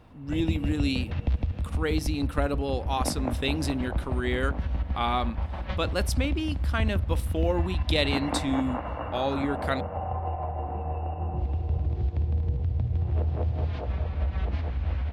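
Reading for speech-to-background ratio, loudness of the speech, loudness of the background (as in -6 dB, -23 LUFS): 1.0 dB, -30.0 LUFS, -31.0 LUFS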